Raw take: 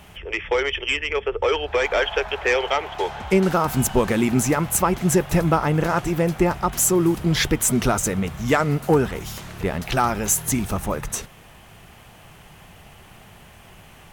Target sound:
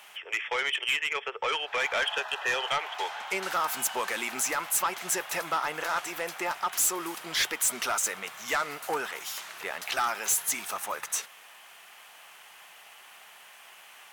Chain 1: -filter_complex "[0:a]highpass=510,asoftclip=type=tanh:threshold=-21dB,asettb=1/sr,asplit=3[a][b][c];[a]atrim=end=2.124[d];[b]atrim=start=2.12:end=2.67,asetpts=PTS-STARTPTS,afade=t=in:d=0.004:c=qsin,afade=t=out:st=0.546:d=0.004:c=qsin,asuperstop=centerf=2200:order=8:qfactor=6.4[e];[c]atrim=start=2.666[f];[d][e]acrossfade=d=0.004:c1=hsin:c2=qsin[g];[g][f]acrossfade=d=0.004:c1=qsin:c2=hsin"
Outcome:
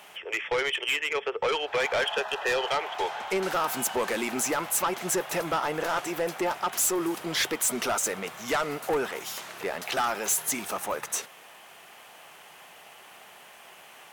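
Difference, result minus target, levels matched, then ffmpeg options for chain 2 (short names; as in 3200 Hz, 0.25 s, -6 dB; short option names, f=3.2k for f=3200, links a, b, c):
500 Hz band +6.5 dB
-filter_complex "[0:a]highpass=1k,asoftclip=type=tanh:threshold=-21dB,asettb=1/sr,asplit=3[a][b][c];[a]atrim=end=2.124[d];[b]atrim=start=2.12:end=2.67,asetpts=PTS-STARTPTS,afade=t=in:d=0.004:c=qsin,afade=t=out:st=0.546:d=0.004:c=qsin,asuperstop=centerf=2200:order=8:qfactor=6.4[e];[c]atrim=start=2.666[f];[d][e]acrossfade=d=0.004:c1=hsin:c2=qsin[g];[g][f]acrossfade=d=0.004:c1=qsin:c2=hsin"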